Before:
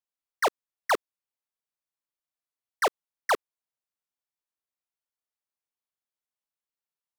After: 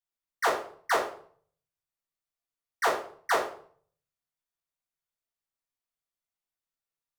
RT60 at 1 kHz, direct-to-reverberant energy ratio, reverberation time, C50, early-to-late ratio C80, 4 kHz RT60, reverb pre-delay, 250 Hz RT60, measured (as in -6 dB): 0.50 s, -6.0 dB, 0.50 s, 6.0 dB, 11.0 dB, 0.40 s, 3 ms, 0.65 s